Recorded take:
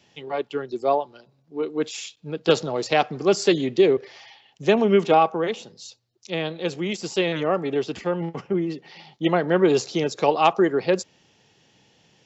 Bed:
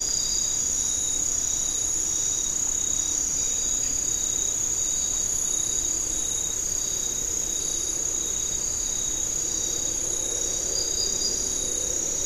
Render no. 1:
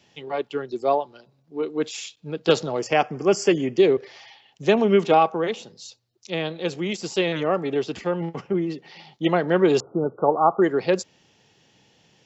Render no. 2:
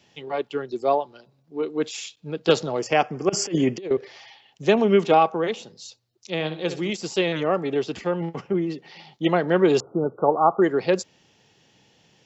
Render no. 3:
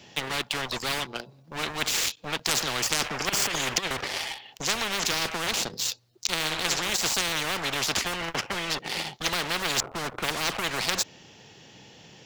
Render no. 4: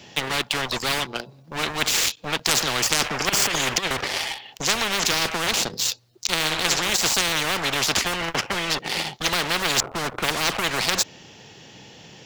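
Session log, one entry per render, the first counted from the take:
2.79–3.78 Butterworth band-stop 3900 Hz, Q 2.3; 9.8–10.62 brick-wall FIR low-pass 1500 Hz
3.29–3.91 negative-ratio compressor -23 dBFS, ratio -0.5; 6.34–6.9 flutter echo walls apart 10.9 m, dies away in 0.37 s
sample leveller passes 2; spectral compressor 10:1
gain +5 dB; limiter -3 dBFS, peak gain reduction 3 dB

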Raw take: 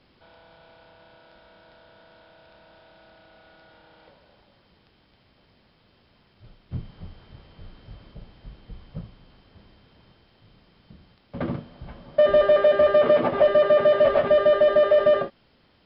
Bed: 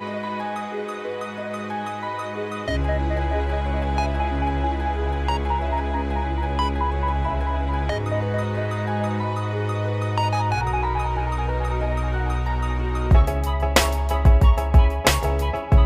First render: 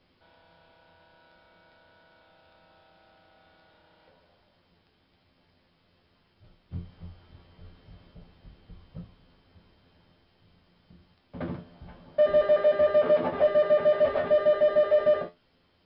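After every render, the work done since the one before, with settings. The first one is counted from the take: resonator 87 Hz, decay 0.21 s, harmonics all, mix 80%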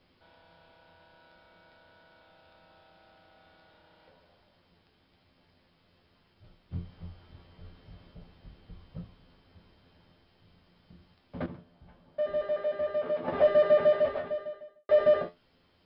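11.46–13.28 gain -9 dB; 13.84–14.89 fade out quadratic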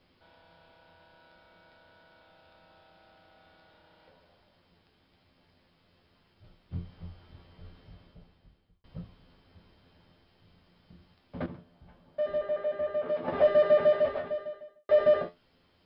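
7.79–8.84 fade out; 12.38–13.09 air absorption 150 m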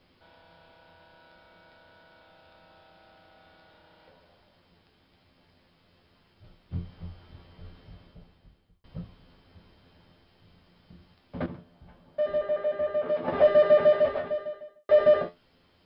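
gain +3 dB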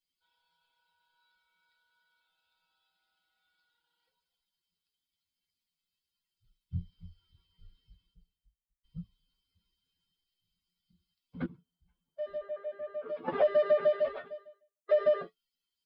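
per-bin expansion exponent 2; compressor 3:1, threshold -23 dBFS, peak gain reduction 6.5 dB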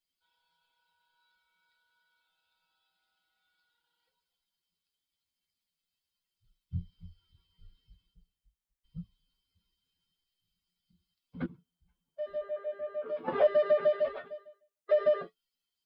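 12.32–13.47 doubler 25 ms -8 dB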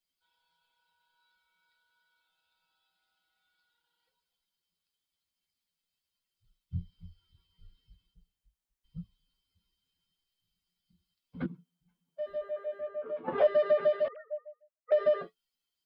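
11.45–12.27 resonant low shelf 120 Hz -11.5 dB, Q 3; 12.88–13.38 air absorption 300 m; 14.08–14.92 sine-wave speech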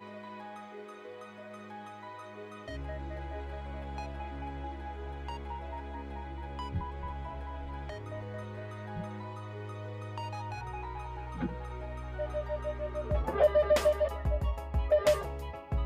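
add bed -17 dB

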